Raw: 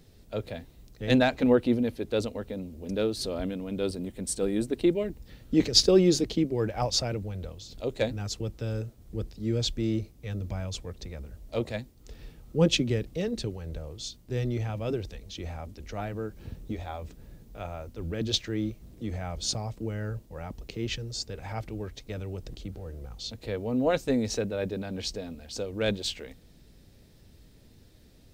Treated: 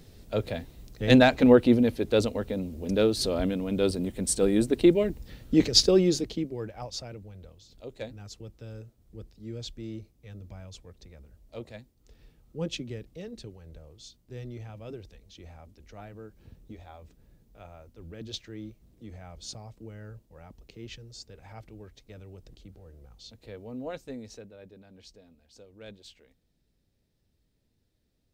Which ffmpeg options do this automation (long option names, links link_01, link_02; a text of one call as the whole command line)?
ffmpeg -i in.wav -af "volume=4.5dB,afade=type=out:start_time=5.06:duration=1.17:silence=0.398107,afade=type=out:start_time=6.23:duration=0.56:silence=0.446684,afade=type=out:start_time=23.68:duration=0.9:silence=0.398107" out.wav